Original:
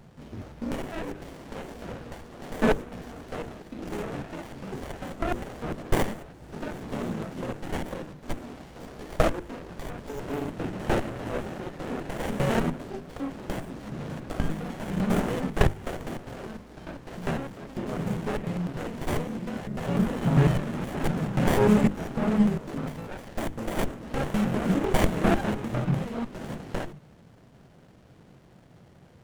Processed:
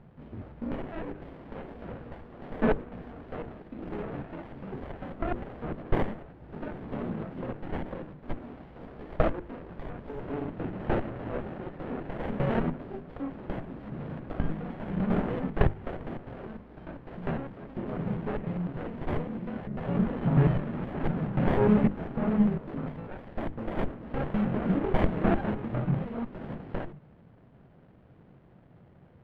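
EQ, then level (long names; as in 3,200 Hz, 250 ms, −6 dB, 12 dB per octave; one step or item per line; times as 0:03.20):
high-frequency loss of the air 470 metres
−1.5 dB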